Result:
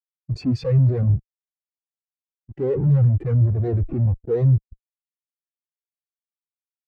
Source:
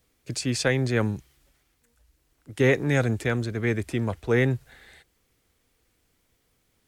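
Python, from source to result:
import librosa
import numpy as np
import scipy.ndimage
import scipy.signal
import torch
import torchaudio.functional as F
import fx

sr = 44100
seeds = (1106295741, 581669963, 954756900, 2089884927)

y = fx.delta_hold(x, sr, step_db=-35.5)
y = fx.lowpass(y, sr, hz=2100.0, slope=6)
y = fx.tube_stage(y, sr, drive_db=37.0, bias=0.3)
y = fx.fuzz(y, sr, gain_db=49.0, gate_db=-52.0)
y = fx.spectral_expand(y, sr, expansion=2.5)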